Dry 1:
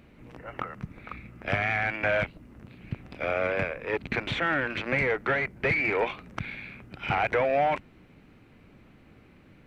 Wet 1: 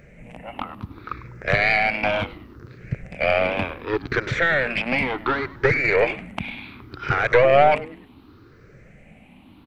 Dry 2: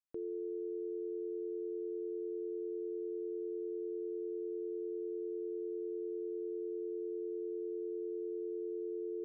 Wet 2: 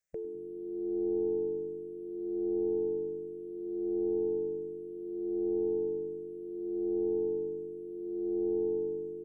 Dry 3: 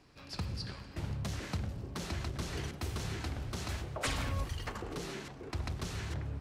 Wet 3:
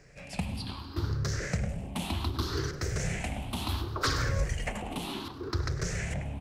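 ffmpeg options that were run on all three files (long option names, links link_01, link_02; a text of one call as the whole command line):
ffmpeg -i in.wav -filter_complex "[0:a]afftfilt=real='re*pow(10,15/40*sin(2*PI*(0.54*log(max(b,1)*sr/1024/100)/log(2)-(0.68)*(pts-256)/sr)))':imag='im*pow(10,15/40*sin(2*PI*(0.54*log(max(b,1)*sr/1024/100)/log(2)-(0.68)*(pts-256)/sr)))':win_size=1024:overlap=0.75,aeval=exprs='0.355*(cos(1*acos(clip(val(0)/0.355,-1,1)))-cos(1*PI/2))+0.112*(cos(2*acos(clip(val(0)/0.355,-1,1)))-cos(2*PI/2))':channel_layout=same,asplit=4[link_01][link_02][link_03][link_04];[link_02]adelay=100,afreqshift=-140,volume=-17.5dB[link_05];[link_03]adelay=200,afreqshift=-280,volume=-25.2dB[link_06];[link_04]adelay=300,afreqshift=-420,volume=-33dB[link_07];[link_01][link_05][link_06][link_07]amix=inputs=4:normalize=0,volume=3.5dB" out.wav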